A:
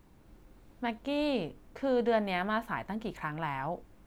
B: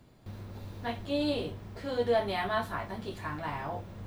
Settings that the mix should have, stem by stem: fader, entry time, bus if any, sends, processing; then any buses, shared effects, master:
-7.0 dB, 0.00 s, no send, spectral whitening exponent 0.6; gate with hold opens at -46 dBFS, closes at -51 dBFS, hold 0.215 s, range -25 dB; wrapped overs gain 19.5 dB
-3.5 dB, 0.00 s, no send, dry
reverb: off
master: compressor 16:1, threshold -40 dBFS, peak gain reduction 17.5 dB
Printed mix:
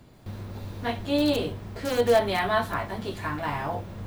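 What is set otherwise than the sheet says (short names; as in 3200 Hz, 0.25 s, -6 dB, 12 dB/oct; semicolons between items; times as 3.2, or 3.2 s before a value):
stem B -3.5 dB -> +6.0 dB; master: missing compressor 16:1, threshold -40 dBFS, peak gain reduction 17.5 dB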